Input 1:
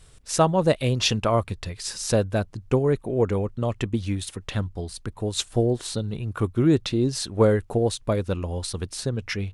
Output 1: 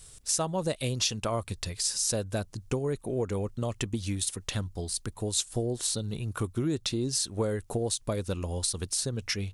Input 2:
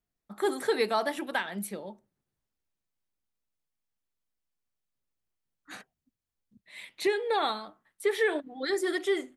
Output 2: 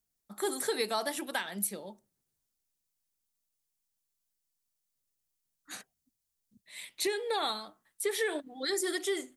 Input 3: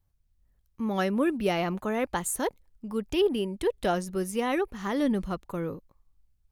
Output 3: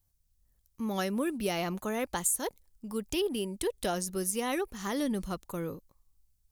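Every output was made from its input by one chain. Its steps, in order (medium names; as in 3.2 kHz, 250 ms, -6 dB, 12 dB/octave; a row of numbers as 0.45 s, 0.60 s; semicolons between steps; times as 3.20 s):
tone controls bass 0 dB, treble +13 dB; compression 4:1, threshold -23 dBFS; trim -3.5 dB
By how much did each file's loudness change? -6.0 LU, -3.0 LU, -3.5 LU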